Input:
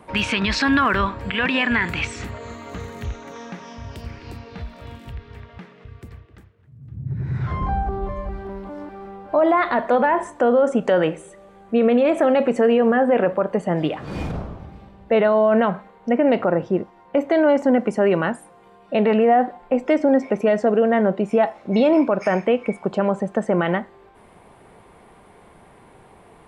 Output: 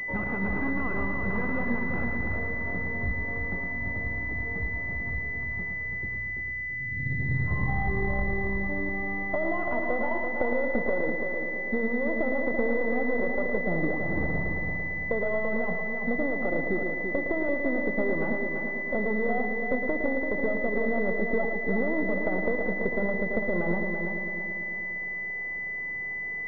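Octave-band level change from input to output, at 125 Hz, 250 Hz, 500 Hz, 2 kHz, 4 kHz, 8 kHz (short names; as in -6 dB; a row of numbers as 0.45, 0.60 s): -4.0 dB, -9.0 dB, -10.5 dB, +1.0 dB, under -25 dB, n/a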